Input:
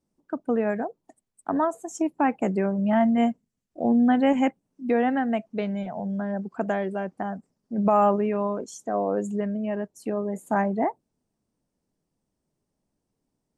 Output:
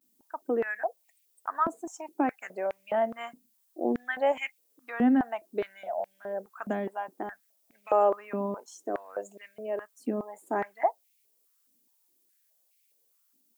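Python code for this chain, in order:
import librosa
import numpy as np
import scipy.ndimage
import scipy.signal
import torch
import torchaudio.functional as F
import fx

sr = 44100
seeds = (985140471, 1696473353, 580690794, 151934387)

y = fx.dmg_noise_colour(x, sr, seeds[0], colour='violet', level_db=-62.0)
y = fx.vibrato(y, sr, rate_hz=0.31, depth_cents=37.0)
y = fx.filter_held_highpass(y, sr, hz=4.8, low_hz=250.0, high_hz=2300.0)
y = y * 10.0 ** (-7.5 / 20.0)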